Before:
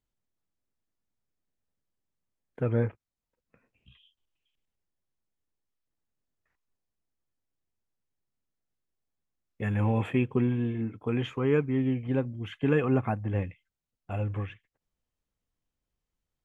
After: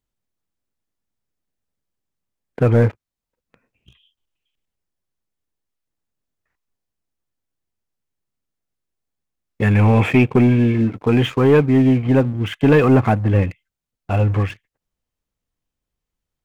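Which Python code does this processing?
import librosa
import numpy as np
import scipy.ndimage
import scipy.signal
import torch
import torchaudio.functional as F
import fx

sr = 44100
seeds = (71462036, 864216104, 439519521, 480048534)

y = fx.leveller(x, sr, passes=2)
y = fx.peak_eq(y, sr, hz=2300.0, db=9.5, octaves=0.21, at=(9.7, 10.76))
y = F.gain(torch.from_numpy(y), 7.0).numpy()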